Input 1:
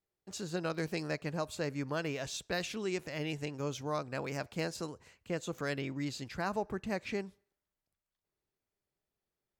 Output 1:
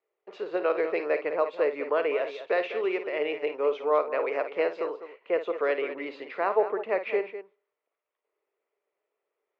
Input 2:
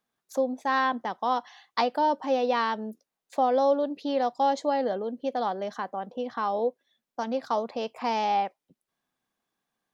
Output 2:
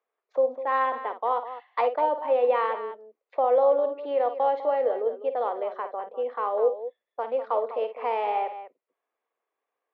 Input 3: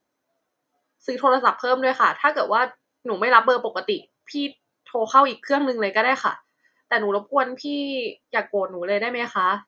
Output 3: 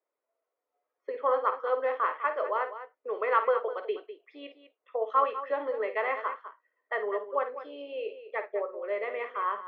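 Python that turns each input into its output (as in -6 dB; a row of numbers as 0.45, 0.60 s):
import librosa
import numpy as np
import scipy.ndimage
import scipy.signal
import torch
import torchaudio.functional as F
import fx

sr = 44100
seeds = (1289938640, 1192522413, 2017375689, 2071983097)

y = fx.cabinet(x, sr, low_hz=440.0, low_slope=24, high_hz=2300.0, hz=(440.0, 810.0, 1600.0), db=(6, -5, -9))
y = fx.echo_multitap(y, sr, ms=(53, 201), db=(-10.5, -12.0))
y = librosa.util.normalize(y) * 10.0 ** (-12 / 20.0)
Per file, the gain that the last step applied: +12.0, +2.5, -8.0 dB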